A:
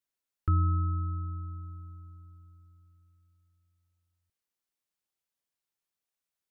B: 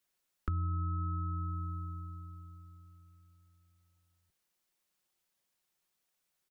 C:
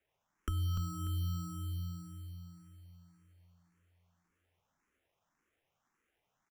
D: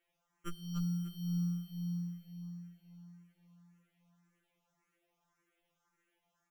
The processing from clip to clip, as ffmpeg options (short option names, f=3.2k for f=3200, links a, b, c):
-filter_complex "[0:a]aecho=1:1:5.5:0.33,acrossover=split=120[a][b];[b]alimiter=level_in=9dB:limit=-24dB:level=0:latency=1:release=79,volume=-9dB[c];[a][c]amix=inputs=2:normalize=0,acompressor=threshold=-40dB:ratio=4,volume=7dB"
-filter_complex "[0:a]acrusher=samples=10:mix=1:aa=0.000001,aecho=1:1:295|590|885|1180:0.531|0.159|0.0478|0.0143,asplit=2[a][b];[b]afreqshift=1.8[c];[a][c]amix=inputs=2:normalize=1,volume=1dB"
-af "afftfilt=real='re*2.83*eq(mod(b,8),0)':imag='im*2.83*eq(mod(b,8),0)':win_size=2048:overlap=0.75,volume=3.5dB"